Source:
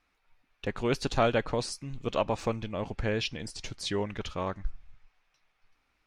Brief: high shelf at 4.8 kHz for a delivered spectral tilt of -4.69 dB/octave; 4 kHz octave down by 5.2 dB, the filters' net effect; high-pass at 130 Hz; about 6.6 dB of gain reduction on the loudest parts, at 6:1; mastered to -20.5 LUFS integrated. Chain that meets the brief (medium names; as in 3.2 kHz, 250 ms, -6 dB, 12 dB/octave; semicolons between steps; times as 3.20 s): high-pass 130 Hz; peaking EQ 4 kHz -8.5 dB; treble shelf 4.8 kHz +3 dB; compression 6:1, threshold -28 dBFS; trim +16 dB